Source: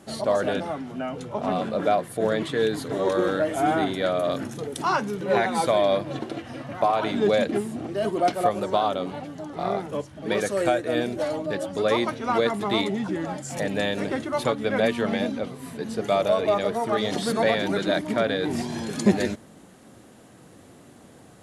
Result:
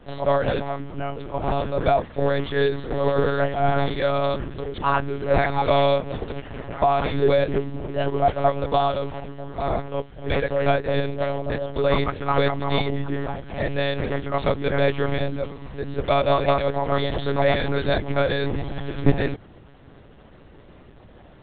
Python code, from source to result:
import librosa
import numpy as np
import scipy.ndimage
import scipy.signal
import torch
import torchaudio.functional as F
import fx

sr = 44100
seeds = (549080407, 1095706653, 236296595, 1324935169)

y = fx.lpc_monotone(x, sr, seeds[0], pitch_hz=140.0, order=10)
y = fx.quant_float(y, sr, bits=8)
y = y * 10.0 ** (2.5 / 20.0)